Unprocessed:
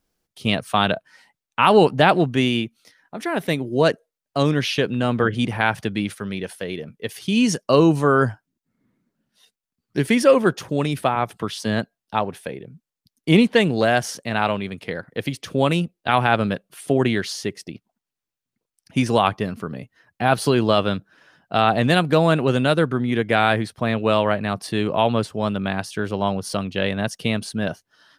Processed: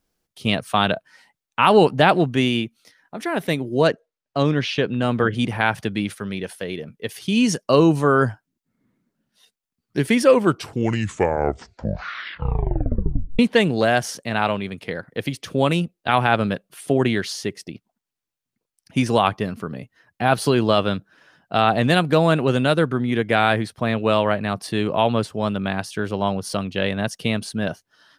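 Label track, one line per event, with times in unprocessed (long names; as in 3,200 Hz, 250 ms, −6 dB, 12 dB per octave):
3.870000	5.020000	high-frequency loss of the air 86 metres
10.210000	10.210000	tape stop 3.18 s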